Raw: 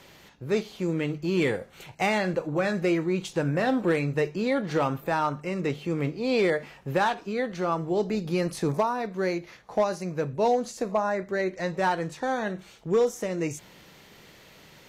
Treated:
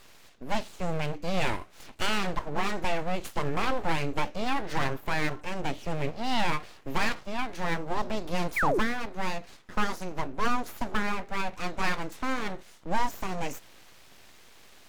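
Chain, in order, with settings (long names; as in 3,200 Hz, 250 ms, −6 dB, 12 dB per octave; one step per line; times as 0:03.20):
full-wave rectification
sound drawn into the spectrogram fall, 0:08.56–0:08.79, 310–2,500 Hz −26 dBFS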